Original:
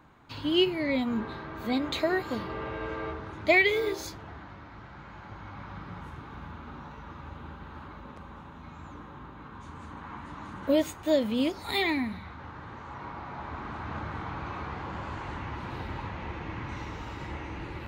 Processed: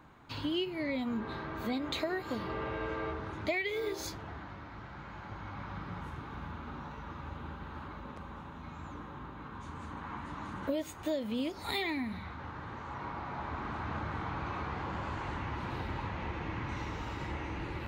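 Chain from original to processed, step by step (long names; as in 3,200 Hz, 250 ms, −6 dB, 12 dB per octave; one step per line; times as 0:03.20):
downward compressor 4 to 1, threshold −32 dBFS, peak gain reduction 13 dB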